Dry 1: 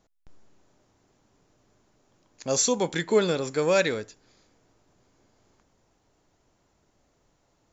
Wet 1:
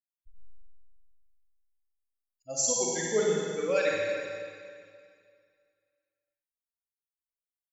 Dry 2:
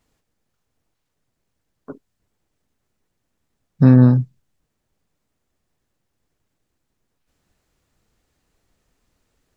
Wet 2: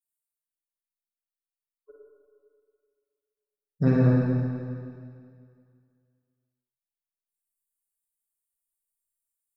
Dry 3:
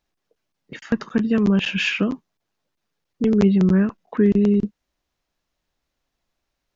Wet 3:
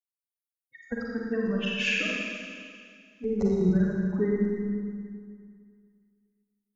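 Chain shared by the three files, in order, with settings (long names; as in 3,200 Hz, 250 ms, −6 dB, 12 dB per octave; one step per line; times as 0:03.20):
spectral dynamics exaggerated over time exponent 3
graphic EQ with 10 bands 125 Hz −8 dB, 250 Hz −8 dB, 1,000 Hz −9 dB, 4,000 Hz −7 dB
four-comb reverb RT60 2.2 s, DRR −4 dB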